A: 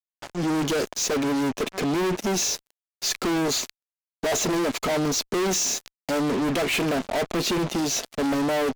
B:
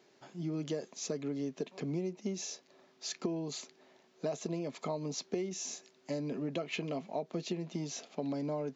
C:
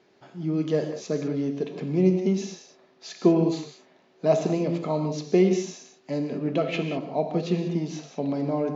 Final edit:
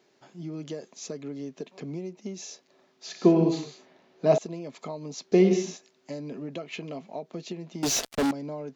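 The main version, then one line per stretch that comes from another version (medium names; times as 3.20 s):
B
3.06–4.38 s: from C
5.32–5.77 s: from C
7.83–8.31 s: from A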